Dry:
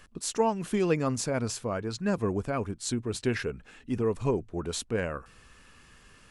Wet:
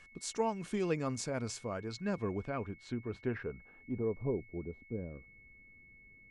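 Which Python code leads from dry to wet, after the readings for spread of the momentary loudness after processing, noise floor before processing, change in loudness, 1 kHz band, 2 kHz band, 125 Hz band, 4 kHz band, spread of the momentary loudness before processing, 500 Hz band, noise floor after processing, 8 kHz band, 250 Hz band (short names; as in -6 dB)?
23 LU, -57 dBFS, -7.5 dB, -8.0 dB, -8.0 dB, -7.5 dB, -10.0 dB, 7 LU, -7.5 dB, -60 dBFS, -10.0 dB, -7.5 dB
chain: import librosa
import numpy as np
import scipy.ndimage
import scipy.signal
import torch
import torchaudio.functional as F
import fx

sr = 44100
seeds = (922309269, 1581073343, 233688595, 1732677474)

y = fx.filter_sweep_lowpass(x, sr, from_hz=7800.0, to_hz=330.0, start_s=1.7, end_s=4.83, q=0.93)
y = y + 10.0 ** (-50.0 / 20.0) * np.sin(2.0 * np.pi * 2200.0 * np.arange(len(y)) / sr)
y = F.gain(torch.from_numpy(y), -7.5).numpy()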